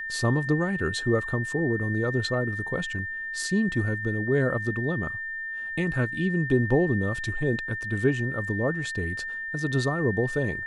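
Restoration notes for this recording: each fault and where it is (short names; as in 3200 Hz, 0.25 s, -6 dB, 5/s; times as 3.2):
tone 1800 Hz -31 dBFS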